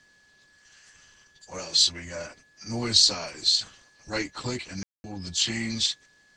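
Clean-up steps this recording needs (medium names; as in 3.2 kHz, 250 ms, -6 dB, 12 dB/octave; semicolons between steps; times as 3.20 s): band-stop 1.7 kHz, Q 30; room tone fill 4.83–5.04 s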